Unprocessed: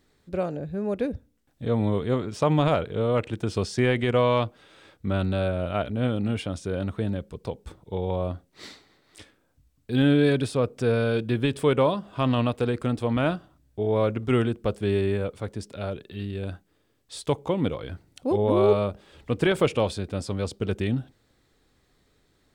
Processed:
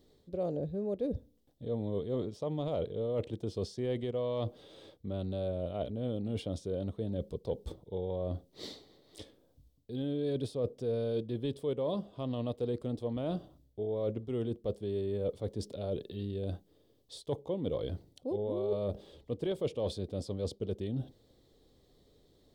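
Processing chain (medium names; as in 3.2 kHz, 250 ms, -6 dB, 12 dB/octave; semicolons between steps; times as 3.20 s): high-order bell 1.9 kHz -15 dB 1.2 oct; reverse; compression 10:1, threshold -33 dBFS, peak gain reduction 18 dB; reverse; graphic EQ 500/1000/2000/8000 Hz +6/-8/+6/-6 dB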